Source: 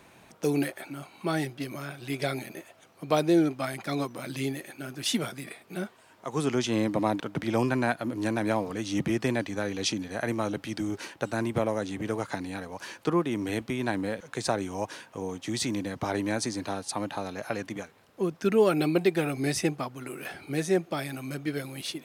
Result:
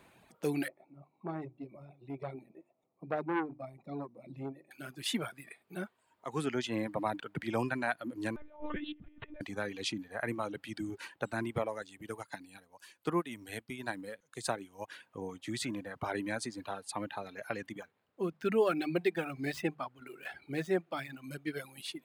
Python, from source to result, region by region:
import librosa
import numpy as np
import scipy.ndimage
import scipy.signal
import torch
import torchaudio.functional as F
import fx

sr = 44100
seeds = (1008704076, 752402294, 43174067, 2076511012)

y = fx.chain(x, sr, fx.moving_average(points=28),
    fx.hum_notches(base_hz=50, count=7),
    fx.transformer_sat(knee_hz=950.0), at=(0.68, 4.71))
y = fx.chain(y, sr, fx.over_compress(threshold_db=-33.0, ratio=-0.5),
    fx.lpc_monotone(seeds[0], pitch_hz=300.0, order=10), at=(8.36, 9.41))
y = fx.chain(y, sr, fx.high_shelf(hz=5100.0, db=9.5),
    fx.upward_expand(threshold_db=-42.0, expansion=1.5), at=(11.82, 14.88))
y = fx.chain(y, sr, fx.median_filter(points=5),
    fx.hum_notches(base_hz=50, count=4), at=(17.81, 21.24))
y = fx.dynamic_eq(y, sr, hz=1700.0, q=1.0, threshold_db=-44.0, ratio=4.0, max_db=4)
y = fx.dereverb_blind(y, sr, rt60_s=1.7)
y = fx.peak_eq(y, sr, hz=5800.0, db=-8.0, octaves=0.38)
y = y * librosa.db_to_amplitude(-6.0)